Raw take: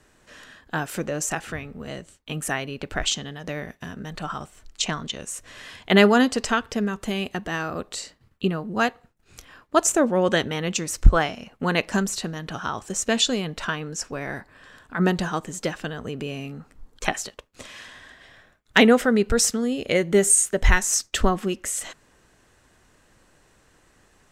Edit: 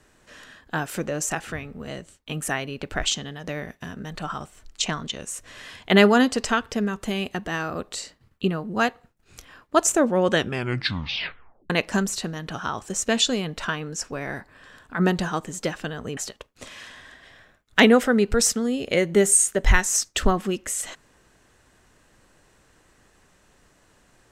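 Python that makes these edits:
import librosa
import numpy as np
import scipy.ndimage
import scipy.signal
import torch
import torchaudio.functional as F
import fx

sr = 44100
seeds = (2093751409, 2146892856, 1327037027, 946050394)

y = fx.edit(x, sr, fx.tape_stop(start_s=10.34, length_s=1.36),
    fx.cut(start_s=16.17, length_s=0.98), tone=tone)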